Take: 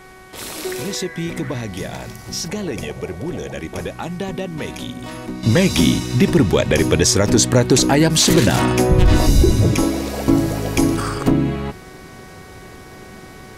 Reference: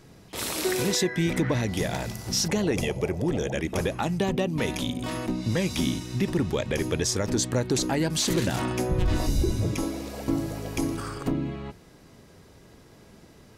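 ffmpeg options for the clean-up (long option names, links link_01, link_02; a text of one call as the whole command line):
ffmpeg -i in.wav -af "bandreject=frequency=374:width_type=h:width=4,bandreject=frequency=748:width_type=h:width=4,bandreject=frequency=1122:width_type=h:width=4,bandreject=frequency=1496:width_type=h:width=4,bandreject=frequency=1870:width_type=h:width=4,bandreject=frequency=2244:width_type=h:width=4,agate=range=-21dB:threshold=-30dB,asetnsamples=nb_out_samples=441:pad=0,asendcmd='5.43 volume volume -11.5dB',volume=0dB" out.wav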